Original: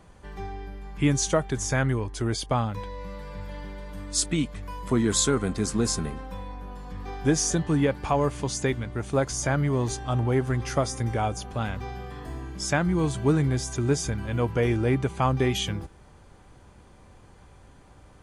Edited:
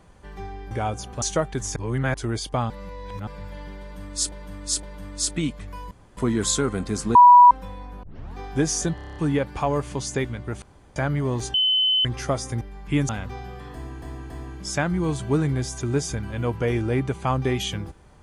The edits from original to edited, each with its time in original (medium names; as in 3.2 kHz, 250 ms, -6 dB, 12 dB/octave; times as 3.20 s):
0.71–1.19 s: swap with 11.09–11.60 s
1.73–2.11 s: reverse
2.67–3.24 s: reverse
3.78–4.29 s: loop, 3 plays
4.86 s: insert room tone 0.26 s
5.84–6.20 s: bleep 977 Hz -6.5 dBFS
6.72 s: tape start 0.32 s
7.64 s: stutter 0.03 s, 8 plays
9.10–9.44 s: room tone
10.02–10.53 s: bleep 3.04 kHz -17 dBFS
12.25–12.53 s: loop, 3 plays